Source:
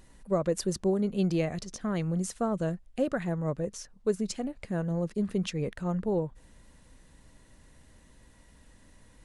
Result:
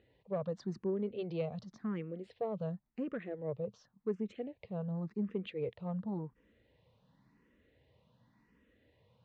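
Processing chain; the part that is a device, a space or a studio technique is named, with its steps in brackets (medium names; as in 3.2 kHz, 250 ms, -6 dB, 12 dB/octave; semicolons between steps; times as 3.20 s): barber-pole phaser into a guitar amplifier (barber-pole phaser +0.91 Hz; saturation -21.5 dBFS, distortion -22 dB; cabinet simulation 100–3800 Hz, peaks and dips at 120 Hz +7 dB, 210 Hz +3 dB, 460 Hz +7 dB, 1.5 kHz -4 dB); trim -7 dB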